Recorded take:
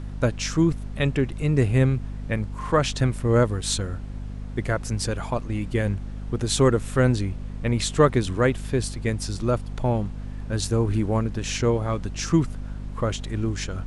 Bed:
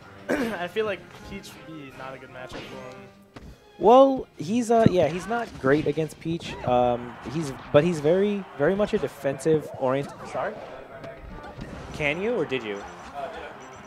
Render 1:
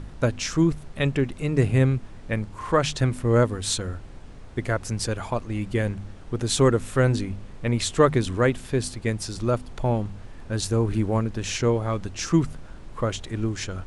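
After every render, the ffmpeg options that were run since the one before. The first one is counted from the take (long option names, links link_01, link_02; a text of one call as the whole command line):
ffmpeg -i in.wav -af "bandreject=frequency=50:width_type=h:width=4,bandreject=frequency=100:width_type=h:width=4,bandreject=frequency=150:width_type=h:width=4,bandreject=frequency=200:width_type=h:width=4,bandreject=frequency=250:width_type=h:width=4" out.wav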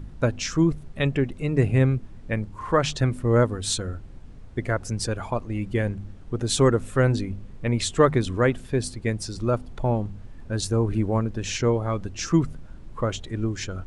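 ffmpeg -i in.wav -af "afftdn=noise_reduction=8:noise_floor=-41" out.wav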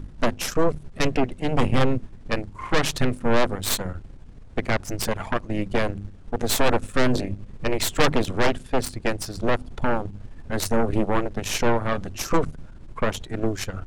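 ffmpeg -i in.wav -af "aeval=exprs='0.531*(cos(1*acos(clip(val(0)/0.531,-1,1)))-cos(1*PI/2))+0.266*(cos(6*acos(clip(val(0)/0.531,-1,1)))-cos(6*PI/2))':channel_layout=same,asoftclip=type=tanh:threshold=-10dB" out.wav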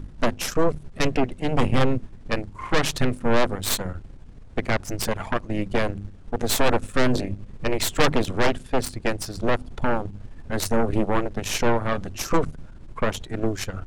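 ffmpeg -i in.wav -af anull out.wav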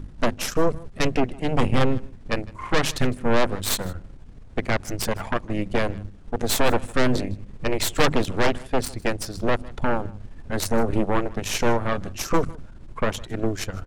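ffmpeg -i in.wav -af "aecho=1:1:156:0.075" out.wav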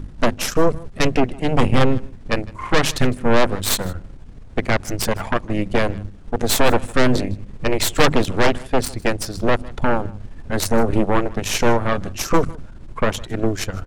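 ffmpeg -i in.wav -af "volume=4.5dB" out.wav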